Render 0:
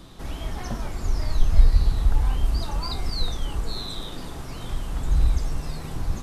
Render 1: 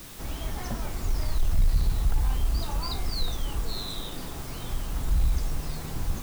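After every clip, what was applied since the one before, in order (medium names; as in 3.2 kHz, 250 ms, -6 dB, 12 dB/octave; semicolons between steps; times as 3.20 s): saturation -13.5 dBFS, distortion -11 dB; in parallel at -4 dB: word length cut 6-bit, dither triangular; on the sum: trim -6 dB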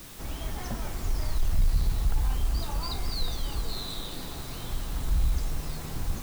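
thinning echo 202 ms, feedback 80%, high-pass 1 kHz, level -10.5 dB; trim -1.5 dB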